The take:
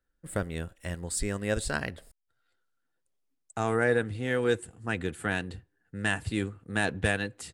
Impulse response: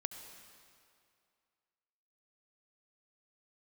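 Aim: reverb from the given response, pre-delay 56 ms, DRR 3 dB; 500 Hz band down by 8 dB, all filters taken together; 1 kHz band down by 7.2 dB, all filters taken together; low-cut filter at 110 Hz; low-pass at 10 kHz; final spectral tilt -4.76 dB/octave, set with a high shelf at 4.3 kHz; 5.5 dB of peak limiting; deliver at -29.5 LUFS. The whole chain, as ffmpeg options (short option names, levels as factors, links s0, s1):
-filter_complex "[0:a]highpass=110,lowpass=10000,equalizer=f=500:t=o:g=-7.5,equalizer=f=1000:t=o:g=-7.5,highshelf=f=4300:g=-4.5,alimiter=limit=0.0794:level=0:latency=1,asplit=2[s0][s1];[1:a]atrim=start_sample=2205,adelay=56[s2];[s1][s2]afir=irnorm=-1:irlink=0,volume=0.794[s3];[s0][s3]amix=inputs=2:normalize=0,volume=1.88"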